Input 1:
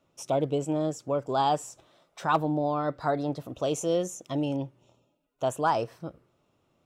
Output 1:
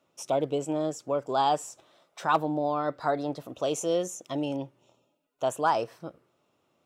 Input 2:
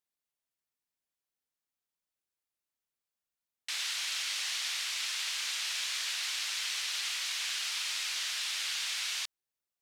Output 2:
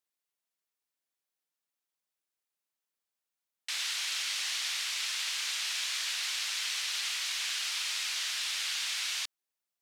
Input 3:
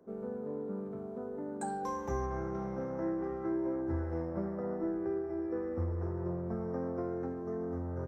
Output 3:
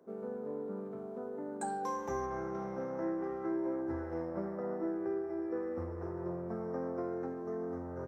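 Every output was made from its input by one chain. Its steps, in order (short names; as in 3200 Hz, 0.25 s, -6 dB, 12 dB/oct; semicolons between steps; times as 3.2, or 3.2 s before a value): HPF 280 Hz 6 dB/oct; gain +1 dB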